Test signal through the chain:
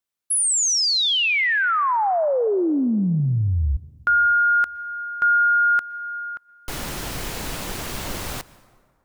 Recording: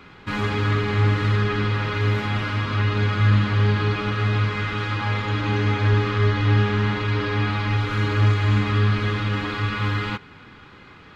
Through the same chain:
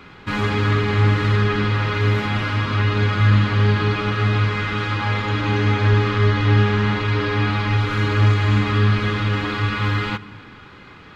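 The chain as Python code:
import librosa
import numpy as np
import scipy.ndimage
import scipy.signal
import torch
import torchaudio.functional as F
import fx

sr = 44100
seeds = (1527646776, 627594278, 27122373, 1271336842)

y = fx.rev_plate(x, sr, seeds[0], rt60_s=1.9, hf_ratio=0.55, predelay_ms=105, drr_db=19.5)
y = F.gain(torch.from_numpy(y), 3.0).numpy()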